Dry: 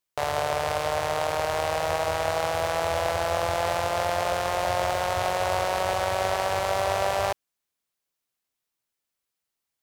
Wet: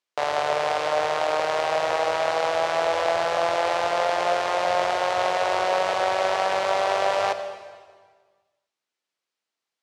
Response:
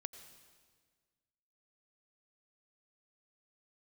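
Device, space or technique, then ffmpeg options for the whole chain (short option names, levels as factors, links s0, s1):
supermarket ceiling speaker: -filter_complex "[0:a]highpass=260,lowpass=5600[s0];[1:a]atrim=start_sample=2205[s1];[s0][s1]afir=irnorm=-1:irlink=0,volume=2.11"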